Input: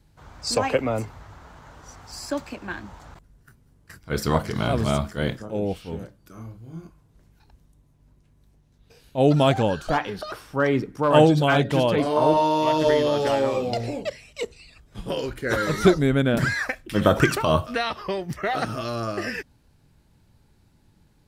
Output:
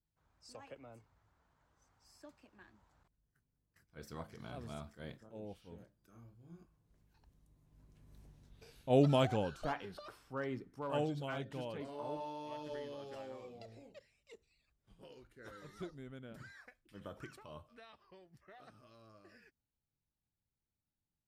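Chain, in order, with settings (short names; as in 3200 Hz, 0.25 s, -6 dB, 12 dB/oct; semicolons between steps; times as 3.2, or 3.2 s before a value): Doppler pass-by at 8.27, 12 m/s, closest 2.9 m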